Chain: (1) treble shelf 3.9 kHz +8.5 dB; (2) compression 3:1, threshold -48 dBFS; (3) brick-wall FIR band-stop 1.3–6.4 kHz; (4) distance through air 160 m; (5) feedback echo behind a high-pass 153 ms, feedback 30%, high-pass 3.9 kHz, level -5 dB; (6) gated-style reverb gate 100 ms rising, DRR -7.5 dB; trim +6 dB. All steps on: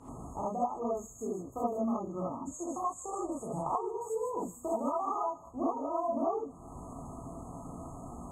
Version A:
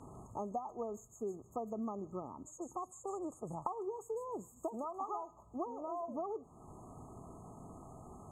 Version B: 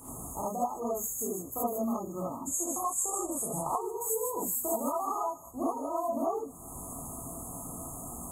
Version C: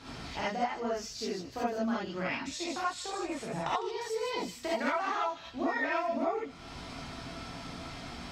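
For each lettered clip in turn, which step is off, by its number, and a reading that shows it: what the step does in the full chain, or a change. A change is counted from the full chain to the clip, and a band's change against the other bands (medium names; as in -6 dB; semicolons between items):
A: 6, crest factor change +2.5 dB; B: 4, 8 kHz band +15.5 dB; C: 3, 8 kHz band +2.0 dB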